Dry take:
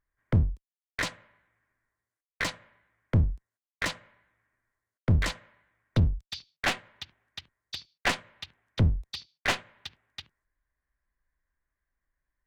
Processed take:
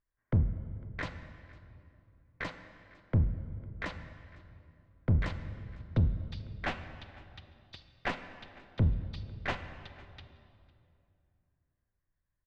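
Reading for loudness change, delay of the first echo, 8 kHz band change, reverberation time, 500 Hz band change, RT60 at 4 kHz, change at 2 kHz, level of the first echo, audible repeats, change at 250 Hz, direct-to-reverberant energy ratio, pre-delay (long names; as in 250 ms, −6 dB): −4.5 dB, 503 ms, below −20 dB, 2.6 s, −4.5 dB, 1.6 s, −8.0 dB, −23.0 dB, 1, −3.5 dB, 10.0 dB, 28 ms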